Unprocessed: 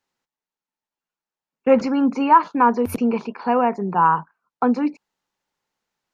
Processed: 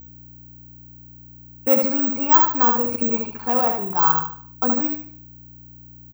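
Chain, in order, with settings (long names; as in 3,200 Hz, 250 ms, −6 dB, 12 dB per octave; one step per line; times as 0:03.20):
low-shelf EQ 170 Hz −6.5 dB
mains hum 60 Hz, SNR 19 dB
repeating echo 74 ms, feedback 36%, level −4.5 dB
bad sample-rate conversion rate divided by 2×, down filtered, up zero stuff
level −4.5 dB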